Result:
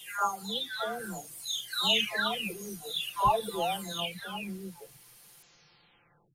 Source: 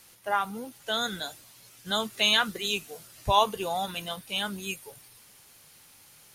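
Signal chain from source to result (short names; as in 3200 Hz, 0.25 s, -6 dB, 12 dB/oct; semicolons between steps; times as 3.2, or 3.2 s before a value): spectral delay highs early, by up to 0.924 s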